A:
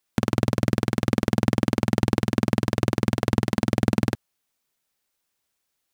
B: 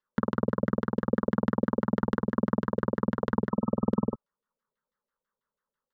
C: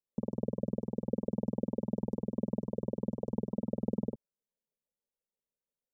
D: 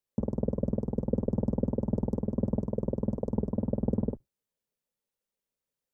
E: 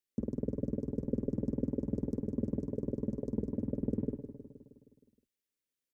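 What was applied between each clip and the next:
spectral repair 3.53–4.5, 1300–9100 Hz after; LFO low-pass saw down 6.1 Hz 460–2700 Hz; fixed phaser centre 480 Hz, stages 8; gain -3 dB
inverse Chebyshev band-stop 1500–3100 Hz, stop band 60 dB; gain -6.5 dB
octaver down 1 oct, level -5 dB; gain +4 dB
EQ curve 180 Hz 0 dB, 310 Hz +9 dB, 850 Hz -11 dB, 1800 Hz +6 dB; on a send: feedback echo 0.157 s, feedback 60%, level -11 dB; on the sum: gain -7.5 dB

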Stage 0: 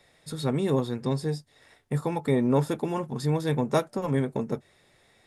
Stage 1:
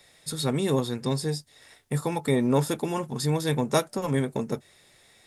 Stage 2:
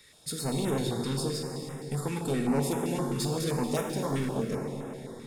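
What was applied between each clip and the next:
high shelf 3000 Hz +10.5 dB
soft clip -26.5 dBFS, distortion -8 dB; plate-style reverb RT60 3.8 s, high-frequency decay 0.7×, DRR 0.5 dB; stepped notch 7.7 Hz 690–4400 Hz

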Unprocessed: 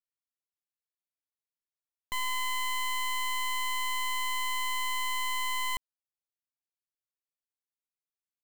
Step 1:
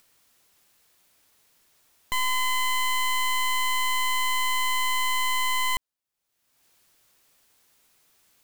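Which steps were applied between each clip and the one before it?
upward compressor, threshold -49 dBFS; gain +6.5 dB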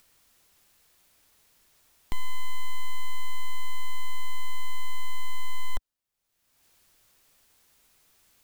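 one-sided fold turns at -28.5 dBFS; low shelf 74 Hz +10.5 dB; in parallel at -9.5 dB: wrapped overs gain 19.5 dB; on the sum: gain -2.5 dB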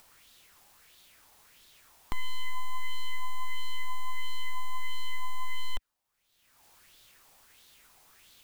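limiter -25.5 dBFS, peak gain reduction 7.5 dB; LFO bell 1.5 Hz 780–3800 Hz +11 dB; gain +3 dB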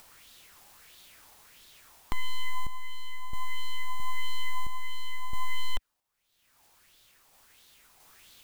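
random-step tremolo 1.5 Hz, depth 65%; gain +4.5 dB

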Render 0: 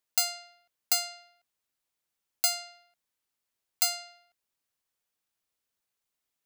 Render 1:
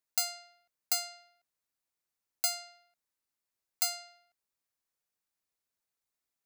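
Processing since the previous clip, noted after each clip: bell 3100 Hz -5 dB 0.38 oct; gain -4 dB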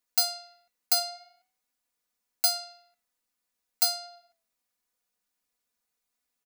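flange 0.49 Hz, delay 8.5 ms, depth 1.6 ms, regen +89%; comb 4.1 ms, depth 87%; gain +7.5 dB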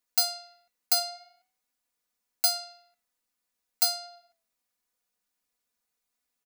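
nothing audible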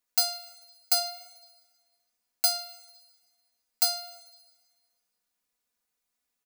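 reverb RT60 1.7 s, pre-delay 49 ms, DRR 18 dB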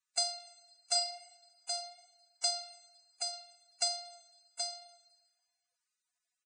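notch comb 200 Hz; on a send: echo 0.776 s -5 dB; on the sum: gain -4 dB; Vorbis 16 kbps 22050 Hz

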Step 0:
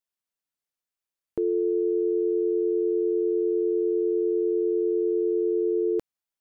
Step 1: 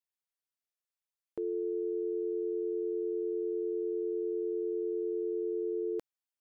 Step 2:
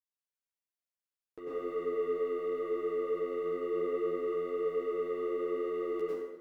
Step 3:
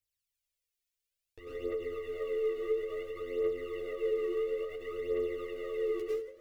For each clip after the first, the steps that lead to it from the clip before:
low shelf 270 Hz -10.5 dB; gain -6 dB
sample leveller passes 2; chorus voices 6, 1.1 Hz, delay 13 ms, depth 3.2 ms; plate-style reverb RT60 1.1 s, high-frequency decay 0.75×, pre-delay 85 ms, DRR -8 dB; gain -6.5 dB
phaser 0.58 Hz, delay 2.8 ms, feedback 62%; EQ curve 110 Hz 0 dB, 160 Hz -23 dB, 530 Hz -8 dB, 940 Hz -23 dB, 2400 Hz -4 dB; ending taper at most 110 dB/s; gain +8.5 dB

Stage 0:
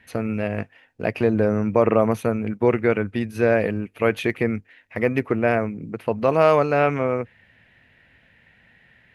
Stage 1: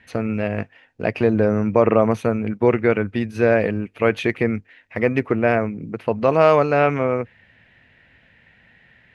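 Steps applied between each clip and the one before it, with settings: LPF 7400 Hz 12 dB/oct; gain +2 dB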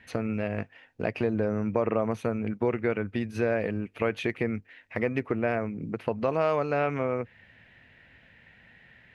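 compressor 2:1, threshold -27 dBFS, peak gain reduction 10 dB; gain -2 dB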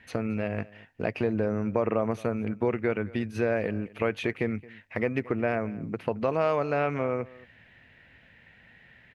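echo 0.221 s -21.5 dB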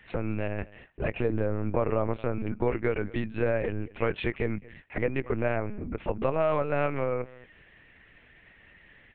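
LPC vocoder at 8 kHz pitch kept

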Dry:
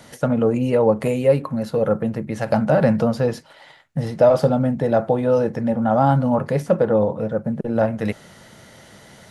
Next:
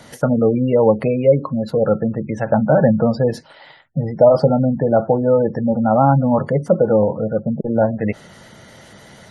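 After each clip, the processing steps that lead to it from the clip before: spectral gate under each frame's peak -25 dB strong; gain +3 dB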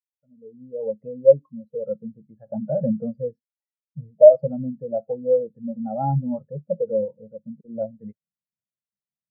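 opening faded in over 1.18 s; spectral expander 2.5:1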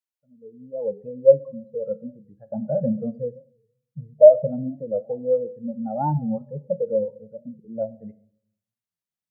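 on a send at -15.5 dB: reverb RT60 0.65 s, pre-delay 3 ms; on the sum: record warp 45 rpm, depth 160 cents

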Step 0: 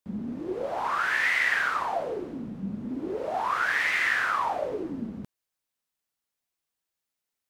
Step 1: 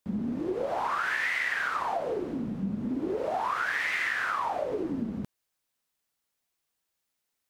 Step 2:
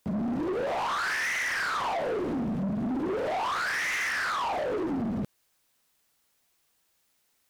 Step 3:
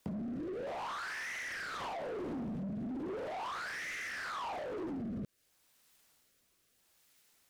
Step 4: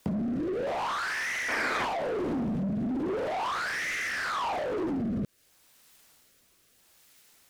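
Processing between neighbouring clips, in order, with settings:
compressor 5:1, threshold -31 dBFS, peak gain reduction 10 dB; gain +4 dB
in parallel at +2.5 dB: limiter -29 dBFS, peak gain reduction 11 dB; on the sum: soft clip -30 dBFS, distortion -9 dB; gain +3 dB
rotary speaker horn 0.8 Hz; limiter -31.5 dBFS, peak gain reduction 9.5 dB; compressor, threshold -42 dBFS, peak gain reduction 8 dB; gain +4 dB
painted sound noise, 1.48–1.85, 210–2500 Hz -41 dBFS; gain +9 dB

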